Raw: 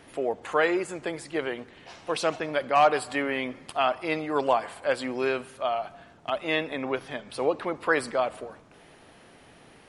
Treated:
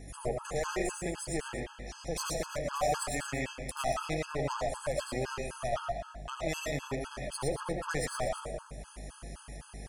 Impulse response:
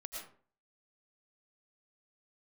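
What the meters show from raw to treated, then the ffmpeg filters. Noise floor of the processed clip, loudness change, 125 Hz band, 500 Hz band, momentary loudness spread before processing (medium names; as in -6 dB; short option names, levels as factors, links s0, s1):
-53 dBFS, -7.5 dB, +5.5 dB, -8.0 dB, 10 LU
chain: -filter_complex "[0:a]aeval=exprs='0.316*(cos(1*acos(clip(val(0)/0.316,-1,1)))-cos(1*PI/2))+0.0355*(cos(8*acos(clip(val(0)/0.316,-1,1)))-cos(8*PI/2))':c=same,equalizer=f=140:t=o:w=0.38:g=11,asplit=2[s0][s1];[s1]acompressor=threshold=0.0158:ratio=6,volume=0.708[s2];[s0][s2]amix=inputs=2:normalize=0,alimiter=limit=0.168:level=0:latency=1:release=108,areverse,acompressor=mode=upward:threshold=0.0112:ratio=2.5,areverse,highshelf=f=4700:t=q:w=1.5:g=8,aeval=exprs='val(0)+0.01*(sin(2*PI*50*n/s)+sin(2*PI*2*50*n/s)/2+sin(2*PI*3*50*n/s)/3+sin(2*PI*4*50*n/s)/4+sin(2*PI*5*50*n/s)/5)':c=same,aecho=1:1:78.72|233.2:0.316|0.282[s3];[1:a]atrim=start_sample=2205,afade=t=out:st=0.17:d=0.01,atrim=end_sample=7938[s4];[s3][s4]afir=irnorm=-1:irlink=0,afftfilt=real='re*gt(sin(2*PI*3.9*pts/sr)*(1-2*mod(floor(b*sr/1024/850),2)),0)':imag='im*gt(sin(2*PI*3.9*pts/sr)*(1-2*mod(floor(b*sr/1024/850),2)),0)':win_size=1024:overlap=0.75"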